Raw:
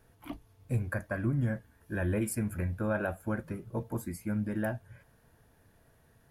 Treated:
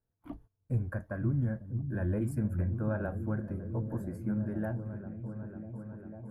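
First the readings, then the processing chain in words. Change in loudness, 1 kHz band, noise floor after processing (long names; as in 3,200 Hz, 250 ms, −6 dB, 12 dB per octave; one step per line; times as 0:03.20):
−1.0 dB, −5.0 dB, −81 dBFS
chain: noise gate −52 dBFS, range −21 dB
drawn EQ curve 150 Hz 0 dB, 1,600 Hz −7 dB, 2,300 Hz −16 dB
on a send: echo whose low-pass opens from repeat to repeat 497 ms, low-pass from 200 Hz, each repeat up 1 octave, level −6 dB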